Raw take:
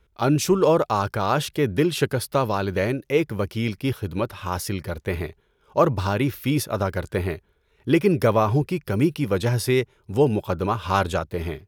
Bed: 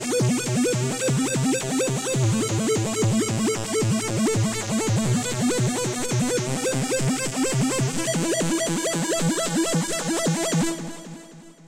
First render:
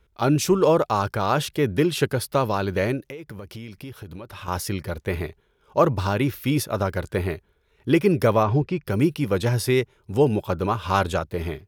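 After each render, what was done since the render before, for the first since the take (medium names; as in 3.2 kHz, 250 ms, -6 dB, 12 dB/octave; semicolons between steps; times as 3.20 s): 3.02–4.48 s: compression 16:1, threshold -33 dBFS; 8.43–8.87 s: distance through air 120 m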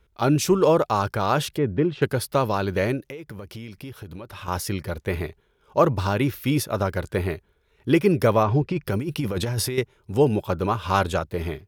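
1.58–2.02 s: tape spacing loss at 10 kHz 39 dB; 8.69–9.78 s: compressor with a negative ratio -25 dBFS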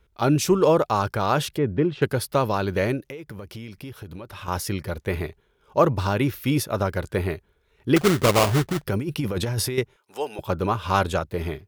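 7.96–8.85 s: sample-rate reducer 1.7 kHz, jitter 20%; 9.96–10.39 s: high-pass 800 Hz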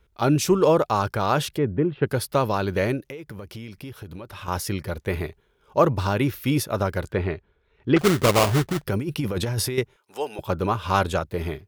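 1.65–2.07 s: distance through air 430 m; 7.12–7.99 s: low-pass 3.5 kHz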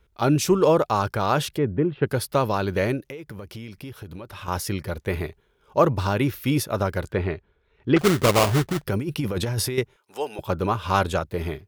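no audible change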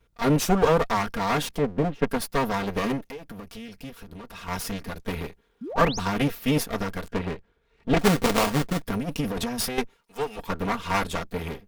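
comb filter that takes the minimum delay 4.3 ms; 5.61–5.99 s: painted sound rise 200–7100 Hz -34 dBFS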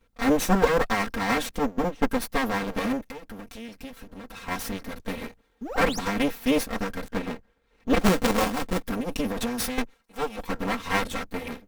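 comb filter that takes the minimum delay 3.8 ms; in parallel at -12 dB: sample-rate reducer 6.4 kHz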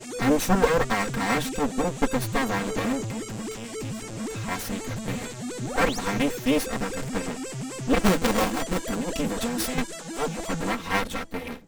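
add bed -11.5 dB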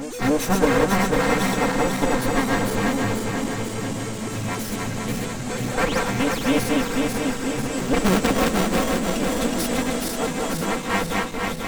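backward echo that repeats 246 ms, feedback 76%, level -2 dB; pre-echo 279 ms -12.5 dB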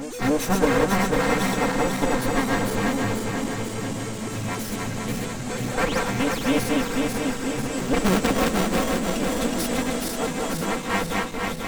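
trim -1.5 dB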